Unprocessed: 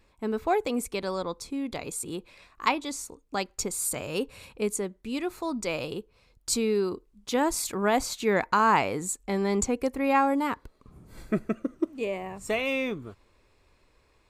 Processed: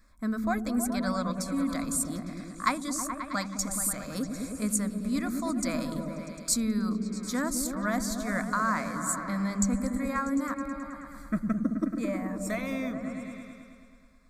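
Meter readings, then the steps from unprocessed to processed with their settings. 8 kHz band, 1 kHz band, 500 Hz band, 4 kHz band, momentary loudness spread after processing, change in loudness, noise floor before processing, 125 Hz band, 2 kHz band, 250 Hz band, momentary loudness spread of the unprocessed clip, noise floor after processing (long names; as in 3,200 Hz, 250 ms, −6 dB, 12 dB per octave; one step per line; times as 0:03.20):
+1.5 dB, −5.5 dB, −8.0 dB, −4.5 dB, 8 LU, −2.0 dB, −65 dBFS, +3.0 dB, −3.0 dB, +2.5 dB, 11 LU, −52 dBFS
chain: parametric band 470 Hz −13.5 dB 0.77 octaves
speech leveller within 4 dB 0.5 s
phaser with its sweep stopped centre 570 Hz, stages 8
echo whose low-pass opens from repeat to repeat 107 ms, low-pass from 200 Hz, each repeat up 1 octave, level 0 dB
level +2 dB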